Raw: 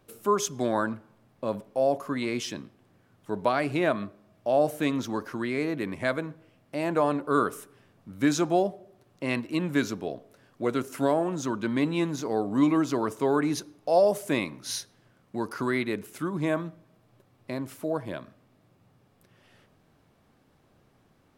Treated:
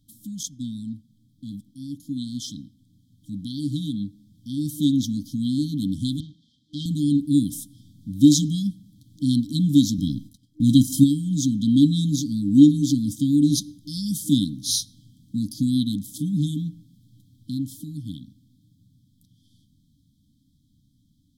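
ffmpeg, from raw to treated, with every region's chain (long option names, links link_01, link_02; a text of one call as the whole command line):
ffmpeg -i in.wav -filter_complex "[0:a]asettb=1/sr,asplit=3[link_01][link_02][link_03];[link_01]atrim=end=0.434[link_04];[link_02]atrim=start=0.43:end=0.93,asetpts=PTS-STARTPTS,afade=type=in:duration=0.004:curve=qsin,afade=type=out:start_time=0.496:duration=0.004:curve=qsin,highshelf=frequency=11000:gain=-4.5,agate=range=-33dB:threshold=-33dB:ratio=3:release=100:detection=peak[link_05];[link_03]atrim=start=0.926[link_06];[link_04][link_05]acrossfade=duration=0.004:curve1=hsin:curve2=qsin[link_07];[link_07][link_06]acrossfade=duration=0.004:curve1=qsin:curve2=hsin,asettb=1/sr,asplit=3[link_08][link_09][link_10];[link_08]atrim=end=6.204[link_11];[link_09]atrim=start=6.2:end=6.86,asetpts=PTS-STARTPTS,afade=type=in:duration=0.004:curve=qsin,afade=type=out:start_time=0.656:duration=0.004:curve=qsin,tiltshelf=frequency=750:gain=-4.5,aeval=exprs='abs(val(0))':channel_layout=same,highpass=140,lowpass=3600[link_12];[link_10]atrim=start=6.856[link_13];[link_11][link_12]acrossfade=duration=0.004:curve1=hsin:curve2=qsin[link_14];[link_14][link_13]acrossfade=duration=0.004:curve1=qsin:curve2=hsin,asettb=1/sr,asplit=3[link_15][link_16][link_17];[link_15]atrim=end=9.984[link_18];[link_16]atrim=start=9.98:end=11.04,asetpts=PTS-STARTPTS,afade=type=in:duration=0.004:curve=qsin,afade=type=out:start_time=1.056:duration=0.004:curve=qsin,agate=range=-20dB:threshold=-57dB:ratio=16:release=100:detection=peak,aecho=1:1:1:0.38,atrim=end_sample=46746,acontrast=29[link_19];[link_17]atrim=start=11.036[link_20];[link_18][link_19]acrossfade=duration=0.004:curve1=hsin:curve2=qsin[link_21];[link_21][link_20]acrossfade=duration=0.004:curve1=qsin:curve2=hsin,afftfilt=real='re*(1-between(b*sr/4096,310,3100))':imag='im*(1-between(b*sr/4096,310,3100))':win_size=4096:overlap=0.75,lowshelf=frequency=140:gain=4,dynaudnorm=framelen=540:gausssize=17:maxgain=12dB" out.wav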